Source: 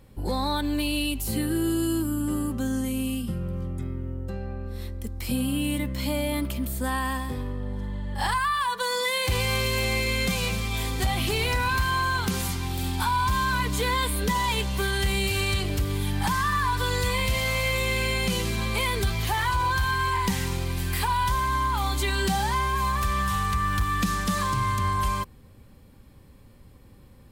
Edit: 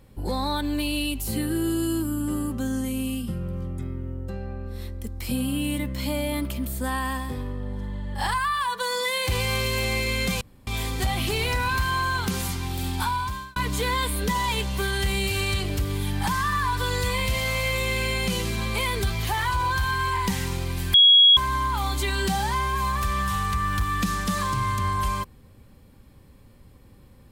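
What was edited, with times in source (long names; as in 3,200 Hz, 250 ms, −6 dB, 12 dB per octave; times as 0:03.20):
0:10.41–0:10.67: fill with room tone
0:13.03–0:13.56: fade out
0:20.94–0:21.37: beep over 3,320 Hz −10.5 dBFS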